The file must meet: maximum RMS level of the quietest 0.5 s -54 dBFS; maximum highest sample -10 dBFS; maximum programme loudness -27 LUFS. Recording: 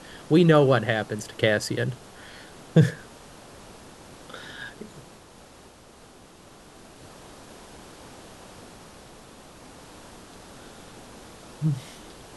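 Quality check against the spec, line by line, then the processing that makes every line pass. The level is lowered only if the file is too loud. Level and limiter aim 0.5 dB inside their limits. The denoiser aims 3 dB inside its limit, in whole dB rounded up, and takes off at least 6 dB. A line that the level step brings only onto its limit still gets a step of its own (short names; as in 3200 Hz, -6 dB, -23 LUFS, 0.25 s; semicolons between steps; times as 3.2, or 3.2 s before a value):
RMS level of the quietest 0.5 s -50 dBFS: fail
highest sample -4.5 dBFS: fail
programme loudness -23.0 LUFS: fail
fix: gain -4.5 dB; limiter -10.5 dBFS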